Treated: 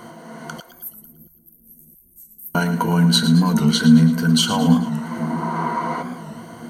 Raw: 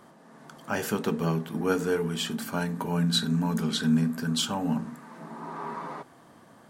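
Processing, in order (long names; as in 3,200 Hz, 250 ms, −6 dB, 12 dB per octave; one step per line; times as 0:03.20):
EQ curve with evenly spaced ripples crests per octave 1.9, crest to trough 12 dB
in parallel at +3 dB: downward compressor, threshold −35 dBFS, peak gain reduction 20 dB
on the sum: bit reduction 12 bits
0:00.60–0:02.55: inverse Chebyshev band-stop filter 240–2,900 Hz, stop band 80 dB
on a send: echo with a time of its own for lows and highs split 360 Hz, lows 672 ms, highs 111 ms, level −11.5 dB
on the sum: wow of a warped record 45 rpm, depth 100 cents
level +5 dB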